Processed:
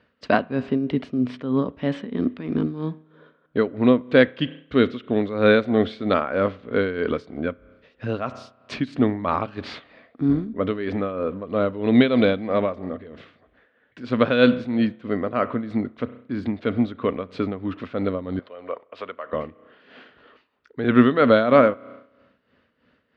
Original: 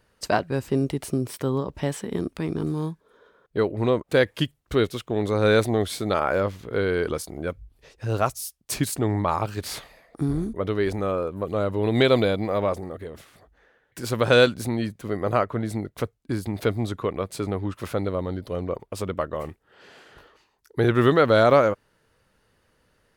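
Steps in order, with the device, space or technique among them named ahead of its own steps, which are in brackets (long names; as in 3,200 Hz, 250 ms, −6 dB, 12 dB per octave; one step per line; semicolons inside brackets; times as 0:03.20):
combo amplifier with spring reverb and tremolo (spring reverb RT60 1.1 s, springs 32 ms, chirp 55 ms, DRR 17 dB; amplitude tremolo 3.1 Hz, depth 69%; loudspeaker in its box 99–3,600 Hz, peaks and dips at 110 Hz −6 dB, 160 Hz −3 dB, 250 Hz +9 dB, 360 Hz −5 dB, 850 Hz −7 dB)
0:18.39–0:19.33: three-way crossover with the lows and the highs turned down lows −23 dB, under 500 Hz, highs −12 dB, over 4,100 Hz
level +5 dB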